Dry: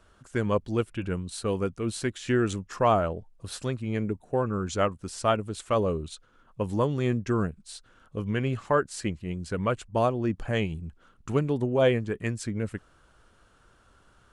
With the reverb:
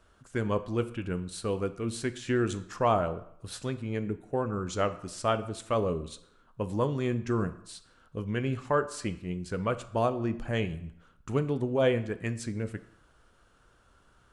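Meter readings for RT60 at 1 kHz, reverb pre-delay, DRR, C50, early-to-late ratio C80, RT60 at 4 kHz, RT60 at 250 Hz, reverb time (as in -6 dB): 0.75 s, 9 ms, 11.0 dB, 14.5 dB, 17.5 dB, 0.60 s, 0.65 s, 0.70 s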